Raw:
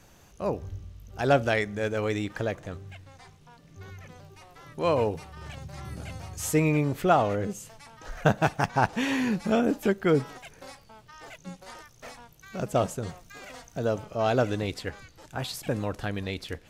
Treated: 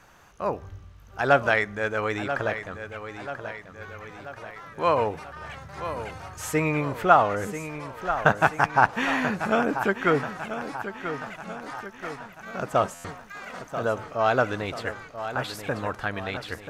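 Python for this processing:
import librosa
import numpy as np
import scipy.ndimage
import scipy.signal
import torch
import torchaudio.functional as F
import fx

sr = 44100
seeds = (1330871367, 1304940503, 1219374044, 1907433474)

p1 = fx.peak_eq(x, sr, hz=1300.0, db=13.0, octaves=1.9)
p2 = p1 + fx.echo_feedback(p1, sr, ms=986, feedback_pct=53, wet_db=-10.5, dry=0)
p3 = fx.buffer_glitch(p2, sr, at_s=(12.94,), block=512, repeats=8)
y = p3 * librosa.db_to_amplitude(-4.0)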